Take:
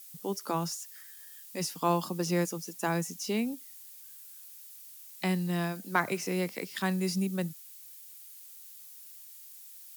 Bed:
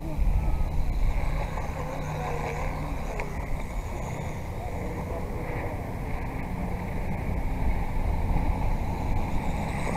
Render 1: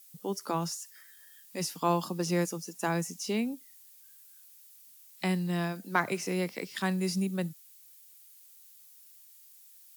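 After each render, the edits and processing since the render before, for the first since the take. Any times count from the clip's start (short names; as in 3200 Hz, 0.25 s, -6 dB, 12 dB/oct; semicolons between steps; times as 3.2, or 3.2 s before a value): noise print and reduce 6 dB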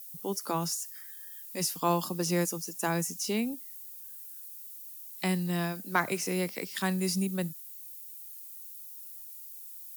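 high shelf 8600 Hz +12 dB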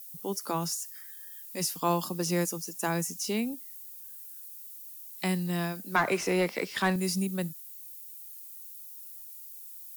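5.96–6.96 overdrive pedal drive 19 dB, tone 1400 Hz, clips at -12.5 dBFS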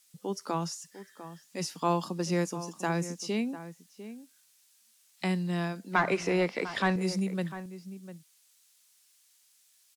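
air absorption 80 m; outdoor echo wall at 120 m, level -13 dB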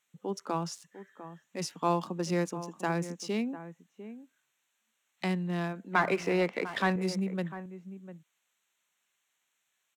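Wiener smoothing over 9 samples; low shelf 87 Hz -8 dB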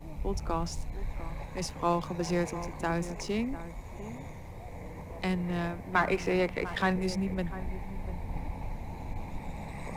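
add bed -10.5 dB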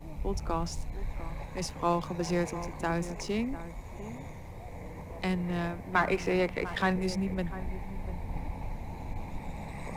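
nothing audible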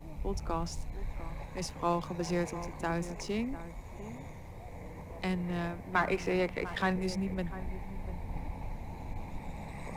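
gain -2.5 dB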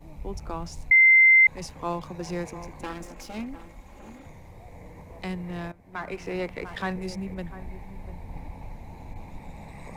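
0.91–1.47 bleep 2080 Hz -12 dBFS; 2.83–4.26 minimum comb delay 3.7 ms; 5.72–6.45 fade in, from -15 dB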